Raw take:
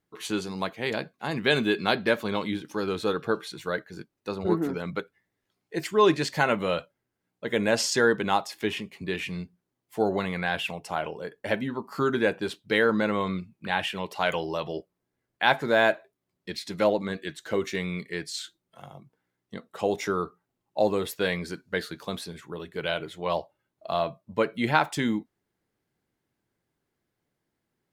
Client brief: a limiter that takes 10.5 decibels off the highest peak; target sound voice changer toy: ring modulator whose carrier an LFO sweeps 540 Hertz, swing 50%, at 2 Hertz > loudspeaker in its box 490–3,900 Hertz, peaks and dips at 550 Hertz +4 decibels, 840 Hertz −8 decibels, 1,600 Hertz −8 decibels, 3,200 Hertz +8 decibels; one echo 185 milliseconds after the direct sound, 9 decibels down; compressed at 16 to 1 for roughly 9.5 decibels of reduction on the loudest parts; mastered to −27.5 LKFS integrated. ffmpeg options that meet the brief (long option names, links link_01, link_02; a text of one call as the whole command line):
ffmpeg -i in.wav -af "acompressor=threshold=-25dB:ratio=16,alimiter=limit=-21.5dB:level=0:latency=1,aecho=1:1:185:0.355,aeval=exprs='val(0)*sin(2*PI*540*n/s+540*0.5/2*sin(2*PI*2*n/s))':channel_layout=same,highpass=490,equalizer=frequency=550:width_type=q:width=4:gain=4,equalizer=frequency=840:width_type=q:width=4:gain=-8,equalizer=frequency=1600:width_type=q:width=4:gain=-8,equalizer=frequency=3200:width_type=q:width=4:gain=8,lowpass=frequency=3900:width=0.5412,lowpass=frequency=3900:width=1.3066,volume=12dB" out.wav